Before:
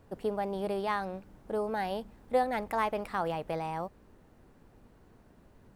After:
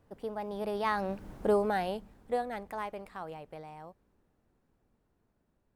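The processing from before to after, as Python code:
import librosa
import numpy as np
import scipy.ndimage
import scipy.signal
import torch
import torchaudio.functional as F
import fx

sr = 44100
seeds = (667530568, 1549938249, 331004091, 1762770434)

y = fx.doppler_pass(x, sr, speed_mps=14, closest_m=3.1, pass_at_s=1.34)
y = y * librosa.db_to_amplitude(8.5)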